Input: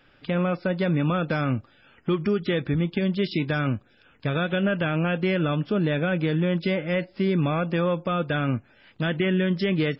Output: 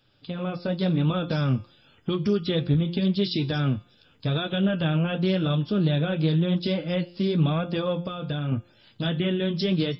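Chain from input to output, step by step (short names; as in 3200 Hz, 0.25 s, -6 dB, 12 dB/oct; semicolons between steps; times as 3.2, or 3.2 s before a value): flange 0.9 Hz, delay 8.4 ms, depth 5.8 ms, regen -35%; 7.97–8.52 compressor, threshold -30 dBFS, peak gain reduction 6.5 dB; graphic EQ 125/2000/4000 Hz +7/-10/+7 dB; AGC gain up to 6 dB; high shelf 3400 Hz +8 dB; de-hum 174.9 Hz, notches 31; Doppler distortion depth 0.12 ms; gain -4.5 dB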